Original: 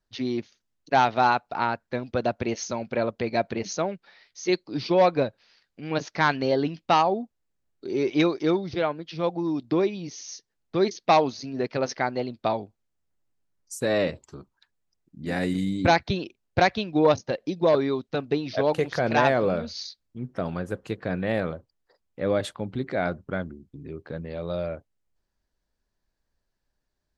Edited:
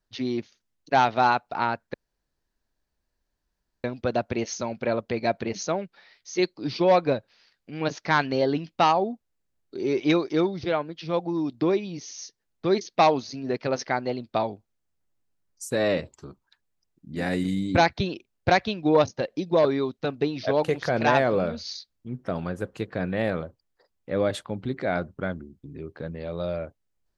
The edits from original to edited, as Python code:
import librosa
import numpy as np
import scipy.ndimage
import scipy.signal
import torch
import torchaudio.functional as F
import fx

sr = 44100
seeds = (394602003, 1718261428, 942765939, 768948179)

y = fx.edit(x, sr, fx.insert_room_tone(at_s=1.94, length_s=1.9), tone=tone)